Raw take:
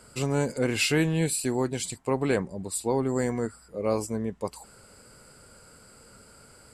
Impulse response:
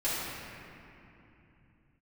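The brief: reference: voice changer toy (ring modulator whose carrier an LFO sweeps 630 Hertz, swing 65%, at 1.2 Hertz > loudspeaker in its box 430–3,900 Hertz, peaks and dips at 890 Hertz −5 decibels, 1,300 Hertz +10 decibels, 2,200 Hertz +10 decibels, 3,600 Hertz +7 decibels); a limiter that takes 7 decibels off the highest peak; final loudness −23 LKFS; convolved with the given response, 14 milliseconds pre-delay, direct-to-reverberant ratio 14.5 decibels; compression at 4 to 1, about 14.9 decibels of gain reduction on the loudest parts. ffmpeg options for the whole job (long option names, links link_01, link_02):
-filter_complex "[0:a]acompressor=threshold=-39dB:ratio=4,alimiter=level_in=7.5dB:limit=-24dB:level=0:latency=1,volume=-7.5dB,asplit=2[link_01][link_02];[1:a]atrim=start_sample=2205,adelay=14[link_03];[link_02][link_03]afir=irnorm=-1:irlink=0,volume=-24dB[link_04];[link_01][link_04]amix=inputs=2:normalize=0,aeval=exprs='val(0)*sin(2*PI*630*n/s+630*0.65/1.2*sin(2*PI*1.2*n/s))':channel_layout=same,highpass=430,equalizer=frequency=890:width_type=q:width=4:gain=-5,equalizer=frequency=1300:width_type=q:width=4:gain=10,equalizer=frequency=2200:width_type=q:width=4:gain=10,equalizer=frequency=3600:width_type=q:width=4:gain=7,lowpass=frequency=3900:width=0.5412,lowpass=frequency=3900:width=1.3066,volume=21dB"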